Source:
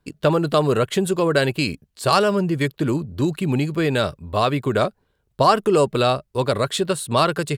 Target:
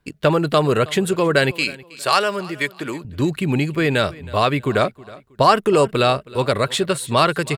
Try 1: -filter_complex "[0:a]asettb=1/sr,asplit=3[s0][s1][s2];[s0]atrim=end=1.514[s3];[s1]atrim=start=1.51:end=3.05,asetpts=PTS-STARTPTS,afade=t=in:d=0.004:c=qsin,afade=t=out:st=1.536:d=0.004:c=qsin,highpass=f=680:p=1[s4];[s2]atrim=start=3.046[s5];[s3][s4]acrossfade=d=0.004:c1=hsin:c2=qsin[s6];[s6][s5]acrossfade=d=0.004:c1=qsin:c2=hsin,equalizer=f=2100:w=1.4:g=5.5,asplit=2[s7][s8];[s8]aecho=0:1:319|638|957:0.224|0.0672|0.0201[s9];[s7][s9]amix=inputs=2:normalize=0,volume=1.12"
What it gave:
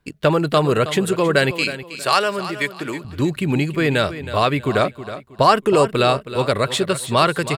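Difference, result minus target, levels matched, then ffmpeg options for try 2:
echo-to-direct +8 dB
-filter_complex "[0:a]asettb=1/sr,asplit=3[s0][s1][s2];[s0]atrim=end=1.514[s3];[s1]atrim=start=1.51:end=3.05,asetpts=PTS-STARTPTS,afade=t=in:d=0.004:c=qsin,afade=t=out:st=1.536:d=0.004:c=qsin,highpass=f=680:p=1[s4];[s2]atrim=start=3.046[s5];[s3][s4]acrossfade=d=0.004:c1=hsin:c2=qsin[s6];[s6][s5]acrossfade=d=0.004:c1=qsin:c2=hsin,equalizer=f=2100:w=1.4:g=5.5,asplit=2[s7][s8];[s8]aecho=0:1:319|638:0.0891|0.0267[s9];[s7][s9]amix=inputs=2:normalize=0,volume=1.12"

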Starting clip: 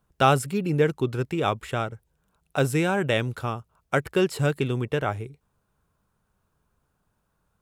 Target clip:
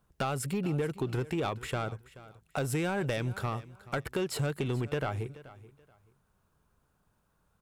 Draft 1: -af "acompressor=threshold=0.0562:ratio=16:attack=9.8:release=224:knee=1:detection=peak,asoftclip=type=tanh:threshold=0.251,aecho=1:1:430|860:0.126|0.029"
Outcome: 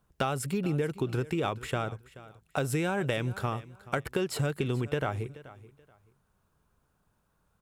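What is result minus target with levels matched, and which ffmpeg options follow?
saturation: distortion -15 dB
-af "acompressor=threshold=0.0562:ratio=16:attack=9.8:release=224:knee=1:detection=peak,asoftclip=type=tanh:threshold=0.0668,aecho=1:1:430|860:0.126|0.029"

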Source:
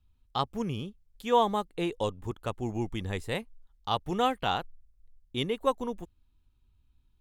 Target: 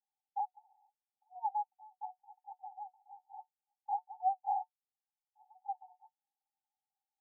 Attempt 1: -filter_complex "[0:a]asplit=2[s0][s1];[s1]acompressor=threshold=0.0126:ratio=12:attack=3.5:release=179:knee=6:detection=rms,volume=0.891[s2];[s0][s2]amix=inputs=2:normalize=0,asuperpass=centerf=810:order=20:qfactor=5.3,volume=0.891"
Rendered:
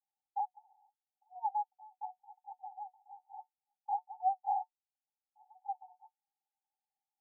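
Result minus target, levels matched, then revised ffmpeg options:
compression: peak gain reduction -11 dB
-filter_complex "[0:a]asplit=2[s0][s1];[s1]acompressor=threshold=0.00316:ratio=12:attack=3.5:release=179:knee=6:detection=rms,volume=0.891[s2];[s0][s2]amix=inputs=2:normalize=0,asuperpass=centerf=810:order=20:qfactor=5.3,volume=0.891"

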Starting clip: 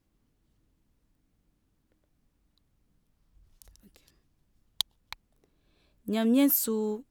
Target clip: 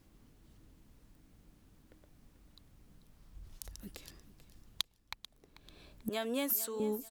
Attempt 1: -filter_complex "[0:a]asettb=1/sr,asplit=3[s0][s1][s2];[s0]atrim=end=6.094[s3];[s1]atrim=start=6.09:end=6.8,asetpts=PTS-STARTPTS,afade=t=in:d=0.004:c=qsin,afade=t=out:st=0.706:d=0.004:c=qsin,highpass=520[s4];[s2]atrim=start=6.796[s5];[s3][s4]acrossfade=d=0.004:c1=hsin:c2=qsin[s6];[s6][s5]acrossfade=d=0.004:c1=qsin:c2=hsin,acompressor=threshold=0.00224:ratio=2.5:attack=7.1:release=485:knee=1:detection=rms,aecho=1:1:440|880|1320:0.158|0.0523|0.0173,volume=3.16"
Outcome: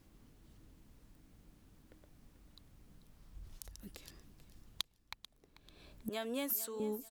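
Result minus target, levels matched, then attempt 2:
compression: peak gain reduction +3.5 dB
-filter_complex "[0:a]asettb=1/sr,asplit=3[s0][s1][s2];[s0]atrim=end=6.094[s3];[s1]atrim=start=6.09:end=6.8,asetpts=PTS-STARTPTS,afade=t=in:d=0.004:c=qsin,afade=t=out:st=0.706:d=0.004:c=qsin,highpass=520[s4];[s2]atrim=start=6.796[s5];[s3][s4]acrossfade=d=0.004:c1=hsin:c2=qsin[s6];[s6][s5]acrossfade=d=0.004:c1=qsin:c2=hsin,acompressor=threshold=0.00447:ratio=2.5:attack=7.1:release=485:knee=1:detection=rms,aecho=1:1:440|880|1320:0.158|0.0523|0.0173,volume=3.16"

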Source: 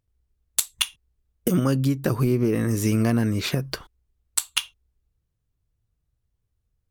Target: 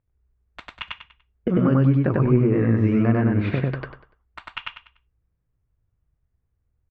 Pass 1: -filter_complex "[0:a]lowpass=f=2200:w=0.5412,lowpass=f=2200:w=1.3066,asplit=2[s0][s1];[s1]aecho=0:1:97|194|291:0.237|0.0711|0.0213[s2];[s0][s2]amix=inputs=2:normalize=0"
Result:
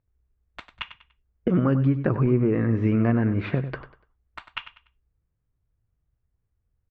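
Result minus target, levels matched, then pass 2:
echo-to-direct -12 dB
-filter_complex "[0:a]lowpass=f=2200:w=0.5412,lowpass=f=2200:w=1.3066,asplit=2[s0][s1];[s1]aecho=0:1:97|194|291|388:0.944|0.283|0.085|0.0255[s2];[s0][s2]amix=inputs=2:normalize=0"

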